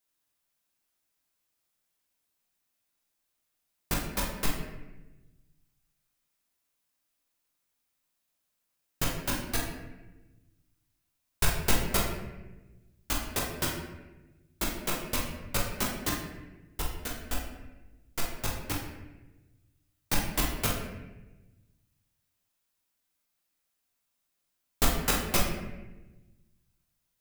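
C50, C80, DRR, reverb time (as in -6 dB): 3.0 dB, 5.5 dB, -2.5 dB, 1.1 s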